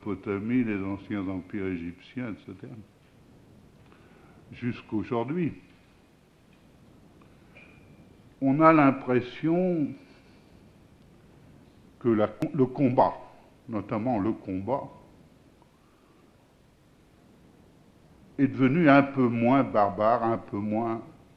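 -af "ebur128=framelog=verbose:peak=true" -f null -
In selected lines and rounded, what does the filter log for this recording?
Integrated loudness:
  I:         -26.2 LUFS
  Threshold: -39.0 LUFS
Loudness range:
  LRA:        14.4 LU
  Threshold: -49.3 LUFS
  LRA low:   -38.9 LUFS
  LRA high:  -24.5 LUFS
True peak:
  Peak:       -4.2 dBFS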